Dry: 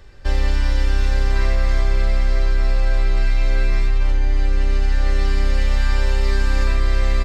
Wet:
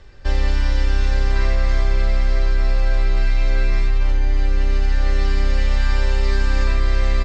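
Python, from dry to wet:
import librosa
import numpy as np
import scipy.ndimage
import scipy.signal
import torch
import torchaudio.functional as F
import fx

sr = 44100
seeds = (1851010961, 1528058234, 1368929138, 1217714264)

y = scipy.signal.sosfilt(scipy.signal.butter(4, 7500.0, 'lowpass', fs=sr, output='sos'), x)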